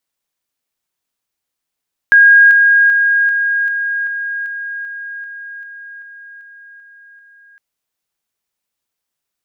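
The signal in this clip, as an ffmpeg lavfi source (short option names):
-f lavfi -i "aevalsrc='pow(10,(-3.5-3*floor(t/0.39))/20)*sin(2*PI*1630*t)':d=5.46:s=44100"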